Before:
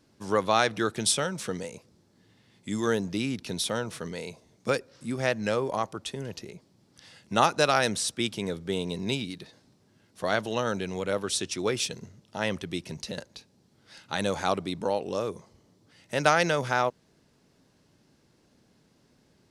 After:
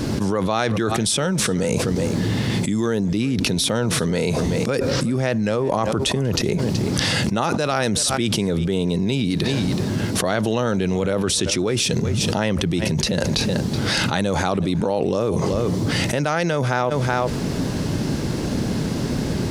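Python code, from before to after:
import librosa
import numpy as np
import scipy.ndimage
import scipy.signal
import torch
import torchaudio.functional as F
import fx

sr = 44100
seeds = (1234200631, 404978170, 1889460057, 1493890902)

p1 = fx.low_shelf(x, sr, hz=420.0, db=8.5)
p2 = p1 + fx.echo_single(p1, sr, ms=376, db=-24.0, dry=0)
p3 = fx.env_flatten(p2, sr, amount_pct=100)
y = p3 * librosa.db_to_amplitude(-5.0)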